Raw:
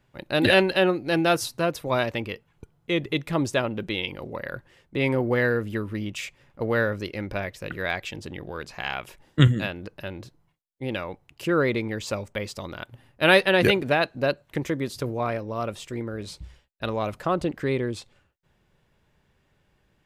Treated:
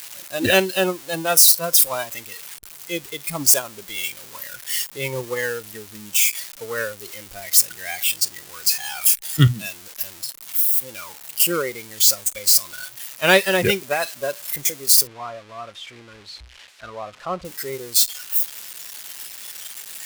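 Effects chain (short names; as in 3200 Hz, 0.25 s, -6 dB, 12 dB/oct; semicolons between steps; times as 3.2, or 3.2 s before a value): switching spikes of -8.5 dBFS; 15.07–17.45 LPF 3000 Hz 12 dB/oct; spectral noise reduction 11 dB; upward expander 1.5:1, over -27 dBFS; gain +3.5 dB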